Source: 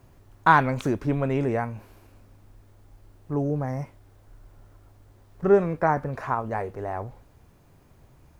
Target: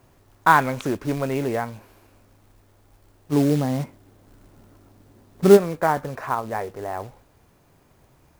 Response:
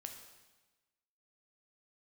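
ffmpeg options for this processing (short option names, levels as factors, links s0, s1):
-filter_complex "[0:a]asplit=3[s0][s1][s2];[s0]afade=t=out:st=3.31:d=0.02[s3];[s1]equalizer=f=220:w=0.9:g=11.5,afade=t=in:st=3.31:d=0.02,afade=t=out:st=5.56:d=0.02[s4];[s2]afade=t=in:st=5.56:d=0.02[s5];[s3][s4][s5]amix=inputs=3:normalize=0,acrusher=bits=5:mode=log:mix=0:aa=0.000001,lowshelf=f=150:g=-8.5,volume=1.26"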